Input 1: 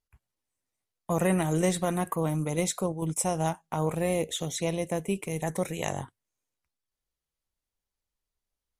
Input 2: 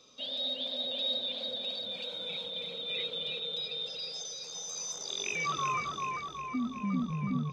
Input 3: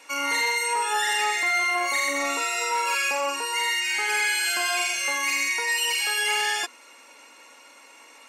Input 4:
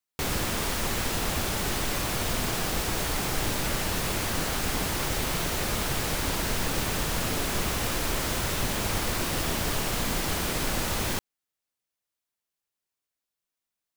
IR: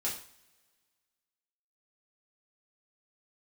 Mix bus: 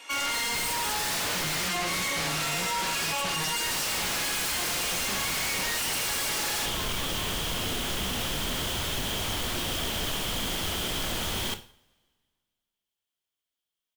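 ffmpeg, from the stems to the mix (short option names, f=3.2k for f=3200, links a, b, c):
-filter_complex "[0:a]lowshelf=f=460:g=10.5,volume=-9.5dB[a];[1:a]adelay=1150,volume=-10dB[b];[2:a]volume=26dB,asoftclip=hard,volume=-26dB,volume=-2.5dB,asplit=2[c][d];[d]volume=-4.5dB[e];[3:a]adelay=350,volume=-4.5dB,asplit=3[f][g][h];[f]atrim=end=1.68,asetpts=PTS-STARTPTS,afade=t=out:st=1.676:d=0.004:c=hsin[i];[g]atrim=start=1.68:end=3.65,asetpts=PTS-STARTPTS,volume=0[j];[h]atrim=start=3.65,asetpts=PTS-STARTPTS,afade=t=in:d=0.004:c=hsin[k];[i][j][k]concat=n=3:v=0:a=1,asplit=2[l][m];[m]volume=-10dB[n];[4:a]atrim=start_sample=2205[o];[e][n]amix=inputs=2:normalize=0[p];[p][o]afir=irnorm=-1:irlink=0[q];[a][b][c][l][q]amix=inputs=5:normalize=0,equalizer=f=3.2k:w=5:g=13,aeval=exprs='0.0596*(abs(mod(val(0)/0.0596+3,4)-2)-1)':c=same"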